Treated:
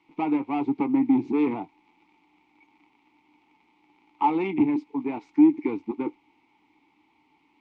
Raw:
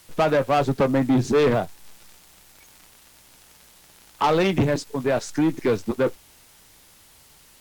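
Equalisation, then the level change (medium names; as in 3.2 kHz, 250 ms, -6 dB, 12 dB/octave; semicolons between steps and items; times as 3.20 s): vowel filter u; low-pass 7.7 kHz; tone controls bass -3 dB, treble -11 dB; +7.5 dB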